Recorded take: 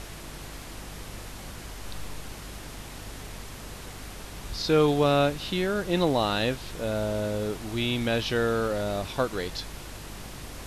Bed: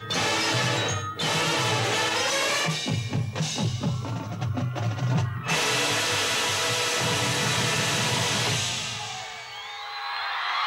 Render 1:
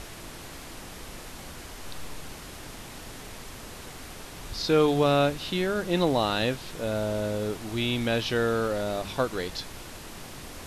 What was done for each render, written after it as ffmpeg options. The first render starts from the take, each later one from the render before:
-af "bandreject=f=50:t=h:w=4,bandreject=f=100:t=h:w=4,bandreject=f=150:t=h:w=4,bandreject=f=200:t=h:w=4"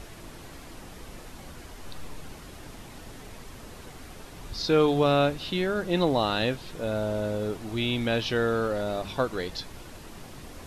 -af "afftdn=nr=6:nf=-43"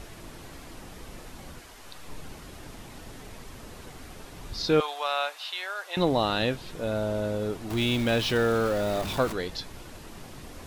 -filter_complex "[0:a]asettb=1/sr,asplit=3[a][b][c];[a]atrim=end=1.594[d];[b]atrim=start=1.59:end=2.08,asetpts=PTS-STARTPTS,afade=t=in:d=0.004:c=qsin,afade=t=out:st=0.486:d=0.004:c=qsin,lowshelf=f=430:g=-9.5[e];[c]atrim=start=2.076[f];[d][e]acrossfade=d=0.004:c1=hsin:c2=qsin[g];[g][f]acrossfade=d=0.004:c1=qsin:c2=hsin,asettb=1/sr,asplit=3[h][i][j];[h]atrim=end=4.804[k];[i]atrim=start=4.8:end=5.97,asetpts=PTS-STARTPTS,afade=t=in:d=0.004:c=qsin,afade=t=out:st=1.166:d=0.004:c=qsin,highpass=f=750:w=0.5412,highpass=f=750:w=1.3066[l];[j]atrim=start=5.966[m];[k][l]acrossfade=d=0.004:c1=hsin:c2=qsin[n];[n][m]acrossfade=d=0.004:c1=qsin:c2=hsin,asettb=1/sr,asplit=3[o][p][q];[o]atrim=end=7.704[r];[p]atrim=start=7.7:end=9.33,asetpts=PTS-STARTPTS,afade=t=in:d=0.004:c=qsin,afade=t=out:st=1.626:d=0.004:c=qsin,aeval=exprs='val(0)+0.5*0.0251*sgn(val(0))':c=same[s];[q]atrim=start=9.326[t];[r][s]acrossfade=d=0.004:c1=hsin:c2=qsin[u];[u][t]acrossfade=d=0.004:c1=qsin:c2=hsin"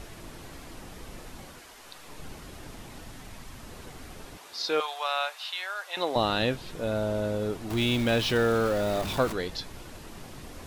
-filter_complex "[0:a]asettb=1/sr,asplit=3[a][b][c];[a]atrim=end=1.454[d];[b]atrim=start=1.45:end=2.2,asetpts=PTS-STARTPTS,afade=t=in:d=0.004:c=qsin,afade=t=out:st=0.746:d=0.004:c=qsin,lowshelf=f=190:g=-9.5[e];[c]atrim=start=2.196[f];[d][e]acrossfade=d=0.004:c1=hsin:c2=qsin[g];[g][f]acrossfade=d=0.004:c1=qsin:c2=hsin,asettb=1/sr,asplit=3[h][i][j];[h]atrim=end=3.044[k];[i]atrim=start=3.04:end=3.69,asetpts=PTS-STARTPTS,afade=t=in:d=0.004:c=qsin,afade=t=out:st=0.646:d=0.004:c=qsin,equalizer=f=440:w=2.1:g=-7[l];[j]atrim=start=3.686[m];[k][l]acrossfade=d=0.004:c1=hsin:c2=qsin[n];[n][m]acrossfade=d=0.004:c1=qsin:c2=hsin,asettb=1/sr,asplit=3[o][p][q];[o]atrim=end=4.374[r];[p]atrim=start=4.37:end=6.16,asetpts=PTS-STARTPTS,afade=t=in:d=0.004:c=qsin,afade=t=out:st=1.786:d=0.004:c=qsin,highpass=560[s];[q]atrim=start=6.156[t];[r][s]acrossfade=d=0.004:c1=hsin:c2=qsin[u];[u][t]acrossfade=d=0.004:c1=qsin:c2=hsin"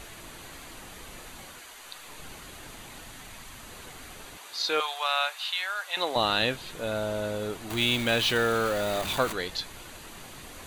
-af "tiltshelf=f=760:g=-5,bandreject=f=5.3k:w=5.9"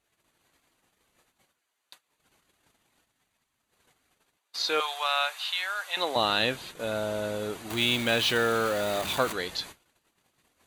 -af "highpass=f=100:p=1,agate=range=-33dB:threshold=-41dB:ratio=16:detection=peak"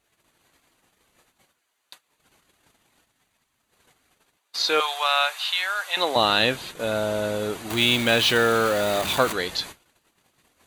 -af "volume=5.5dB"

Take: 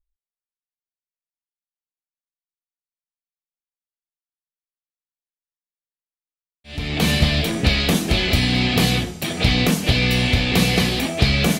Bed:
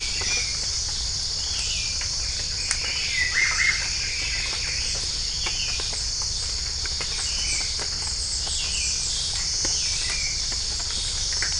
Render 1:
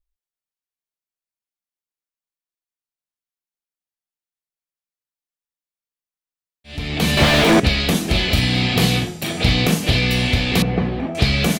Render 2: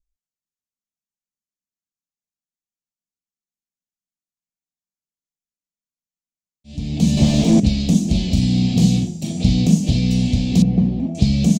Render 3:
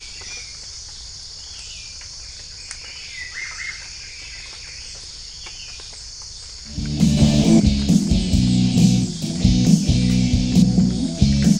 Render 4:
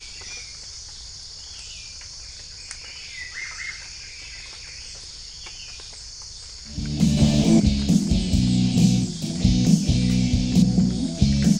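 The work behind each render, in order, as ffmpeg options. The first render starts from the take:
-filter_complex "[0:a]asettb=1/sr,asplit=3[a][b][c];[a]atrim=end=7.174[d];[b]atrim=start=7.17:end=7.6,asetpts=PTS-STARTPTS,afade=t=in:d=0.004:c=qsin,afade=t=out:st=0.426:d=0.004:c=qsin,asplit=2[e][f];[f]highpass=f=720:p=1,volume=39dB,asoftclip=type=tanh:threshold=-2dB[g];[e][g]amix=inputs=2:normalize=0,lowpass=f=1.1k:p=1,volume=-6dB[h];[c]atrim=start=7.596[i];[d][h]acrossfade=d=0.004:c1=hsin:c2=qsin[j];[j][i]acrossfade=d=0.004:c1=qsin:c2=hsin,asplit=3[k][l][m];[k]afade=t=out:st=8.14:d=0.02[n];[l]asplit=2[o][p];[p]adelay=42,volume=-7.5dB[q];[o][q]amix=inputs=2:normalize=0,afade=t=in:st=8.14:d=0.02,afade=t=out:st=10:d=0.02[r];[m]afade=t=in:st=10:d=0.02[s];[n][r][s]amix=inputs=3:normalize=0,asettb=1/sr,asplit=3[t][u][v];[t]atrim=end=10.624[w];[u]atrim=start=10.62:end=11.15,asetpts=PTS-STARTPTS,afade=t=in:d=0.004:c=qsin,afade=t=out:st=0.526:d=0.004:c=qsin,lowpass=1.2k[x];[v]atrim=start=11.146[y];[w][x]acrossfade=d=0.004:c1=hsin:c2=qsin[z];[z][y]acrossfade=d=0.004:c1=qsin:c2=hsin"
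-af "firequalizer=gain_entry='entry(110,0);entry(200,8);entry(400,-10);entry(630,-8);entry(1400,-28);entry(2600,-14);entry(6700,2);entry(11000,-16)':delay=0.05:min_phase=1"
-filter_complex "[1:a]volume=-8.5dB[a];[0:a][a]amix=inputs=2:normalize=0"
-af "volume=-3dB"

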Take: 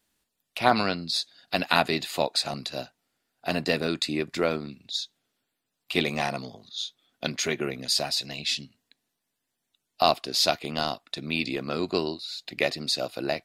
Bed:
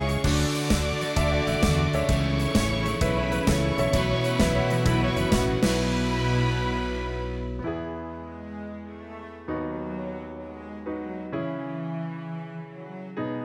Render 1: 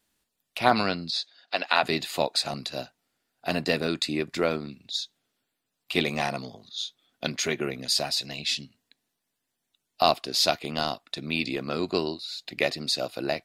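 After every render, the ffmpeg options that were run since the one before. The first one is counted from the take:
-filter_complex "[0:a]asettb=1/sr,asplit=3[a][b][c];[a]atrim=end=1.104[d];[b]atrim=start=1.1:end=1.83,asetpts=PTS-STARTPTS,afade=t=in:d=0.004:c=qsin,afade=t=out:st=0.726:d=0.004:c=qsin,highpass=460,lowpass=5.2k[e];[c]atrim=start=1.826[f];[d][e]acrossfade=d=0.004:c1=hsin:c2=qsin[g];[g][f]acrossfade=d=0.004:c1=qsin:c2=hsin"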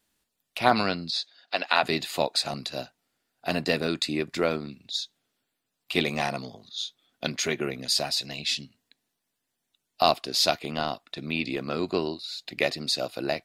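-filter_complex "[0:a]asettb=1/sr,asplit=3[a][b][c];[a]atrim=end=10.624[d];[b]atrim=start=10.62:end=12.24,asetpts=PTS-STARTPTS,afade=t=in:d=0.004:c=qsin,afade=t=out:st=1.616:d=0.004:c=qsin,acrossover=split=3700[e][f];[f]acompressor=threshold=-42dB:ratio=4:attack=1:release=60[g];[e][g]amix=inputs=2:normalize=0[h];[c]atrim=start=12.236[i];[d][h]acrossfade=d=0.004:c1=hsin:c2=qsin[j];[j][i]acrossfade=d=0.004:c1=qsin:c2=hsin"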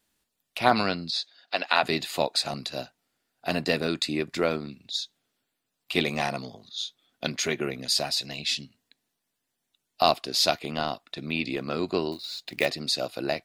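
-filter_complex "[0:a]asettb=1/sr,asplit=3[a][b][c];[a]atrim=end=12.124[d];[b]atrim=start=12.12:end=12.66,asetpts=PTS-STARTPTS,afade=t=in:d=0.004:c=qsin,afade=t=out:st=0.536:d=0.004:c=qsin,acrusher=bits=4:mode=log:mix=0:aa=0.000001[e];[c]atrim=start=12.656[f];[d][e]acrossfade=d=0.004:c1=hsin:c2=qsin[g];[g][f]acrossfade=d=0.004:c1=qsin:c2=hsin"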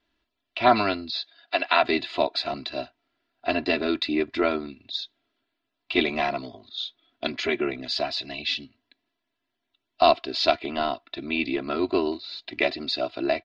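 -af "lowpass=f=4k:w=0.5412,lowpass=f=4k:w=1.3066,aecho=1:1:3:0.91"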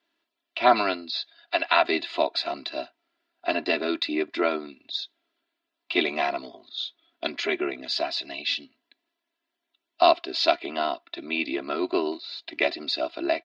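-af "highpass=300"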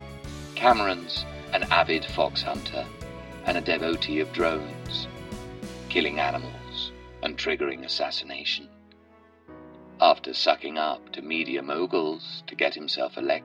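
-filter_complex "[1:a]volume=-15.5dB[a];[0:a][a]amix=inputs=2:normalize=0"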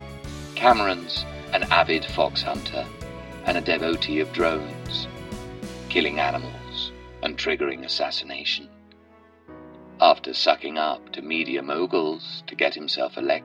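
-af "volume=2.5dB"

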